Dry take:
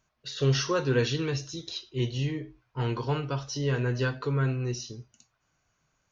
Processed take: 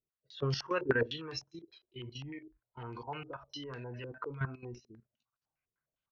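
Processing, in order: spectral noise reduction 15 dB; level held to a coarse grid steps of 13 dB; step-sequenced low-pass 9.9 Hz 410–4800 Hz; trim -5 dB

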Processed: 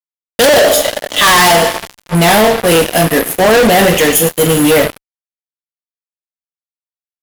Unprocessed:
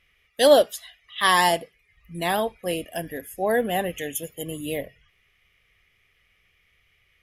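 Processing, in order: two-slope reverb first 0.31 s, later 2 s, from -20 dB, DRR 1.5 dB; fuzz box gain 35 dB, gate -37 dBFS; trim +7 dB

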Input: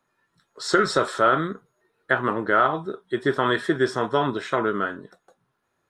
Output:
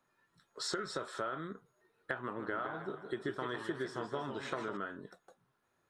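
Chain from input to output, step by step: compression 6:1, threshold -32 dBFS, peak gain reduction 17 dB; 2.22–4.77 s: modulated delay 158 ms, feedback 52%, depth 175 cents, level -8.5 dB; trim -4 dB

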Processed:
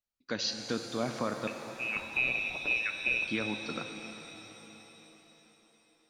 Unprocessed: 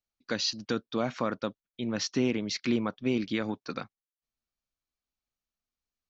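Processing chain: 1.47–3.27 s: frequency inversion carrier 2.8 kHz; pitch-shifted reverb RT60 4 s, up +7 st, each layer -8 dB, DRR 5.5 dB; trim -3.5 dB

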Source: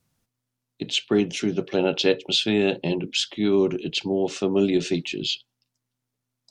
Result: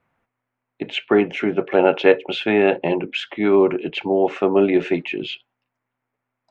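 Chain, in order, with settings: FFT filter 150 Hz 0 dB, 780 Hz +15 dB, 2.2 kHz +13 dB, 4.7 kHz -15 dB; trim -3 dB

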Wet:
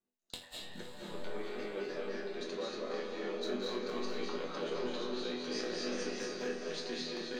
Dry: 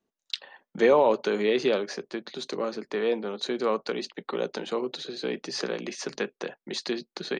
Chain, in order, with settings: one-sided wavefolder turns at -19.5 dBFS; compressor with a negative ratio -28 dBFS, ratio -0.5; chord resonator E2 minor, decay 0.4 s; 1.02–2.41 s: band-pass 170–3400 Hz; echo that smears into a reverb 519 ms, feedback 50%, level -8 dB; reverberation RT60 1.1 s, pre-delay 170 ms, DRR -3 dB; trim +1 dB

